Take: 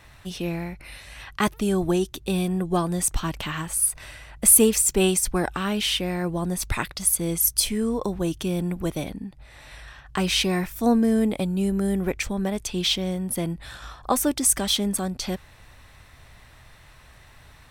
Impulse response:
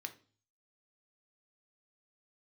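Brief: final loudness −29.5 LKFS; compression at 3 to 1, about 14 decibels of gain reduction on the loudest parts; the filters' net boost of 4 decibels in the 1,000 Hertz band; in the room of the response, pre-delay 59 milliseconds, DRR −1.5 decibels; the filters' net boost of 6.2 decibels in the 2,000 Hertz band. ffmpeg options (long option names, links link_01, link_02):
-filter_complex "[0:a]equalizer=frequency=1000:width_type=o:gain=3.5,equalizer=frequency=2000:width_type=o:gain=7,acompressor=threshold=-30dB:ratio=3,asplit=2[link_01][link_02];[1:a]atrim=start_sample=2205,adelay=59[link_03];[link_02][link_03]afir=irnorm=-1:irlink=0,volume=3.5dB[link_04];[link_01][link_04]amix=inputs=2:normalize=0,volume=-1dB"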